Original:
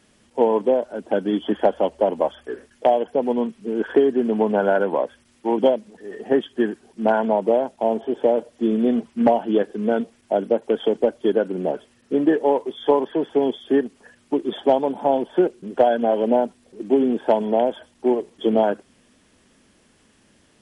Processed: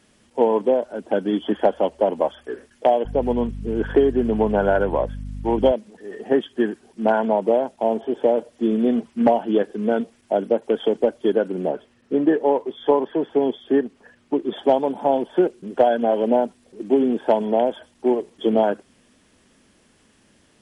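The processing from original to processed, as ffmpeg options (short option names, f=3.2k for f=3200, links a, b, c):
-filter_complex "[0:a]asettb=1/sr,asplit=3[a][b][c];[a]atrim=end=3.054[d];[b]atrim=start=3.05:end=5.72,asetpts=PTS-STARTPTS,afade=t=in:d=0.004:c=qsin,afade=t=out:st=2.666:d=0.004:c=qsin,aeval=exprs='val(0)+0.0316*(sin(2*PI*50*n/s)+sin(2*PI*2*50*n/s)/2+sin(2*PI*3*50*n/s)/3+sin(2*PI*4*50*n/s)/4+sin(2*PI*5*50*n/s)/5)':c=same[e];[c]atrim=start=5.716[f];[d][e]acrossfade=d=0.004:c1=hsin:c2=qsin[g];[g][f]acrossfade=d=0.004:c1=qsin:c2=hsin,asettb=1/sr,asplit=3[h][i][j];[h]atrim=end=11.684[k];[i]atrim=start=11.68:end=14.57,asetpts=PTS-STARTPTS,afade=t=in:d=0.004:c=qsin,afade=t=out:st=2.886:d=0.004:c=qsin,aemphasis=mode=reproduction:type=50kf[l];[j]atrim=start=14.566[m];[k][l]acrossfade=d=0.004:c1=hsin:c2=qsin[n];[n][m]acrossfade=d=0.004:c1=qsin:c2=hsin"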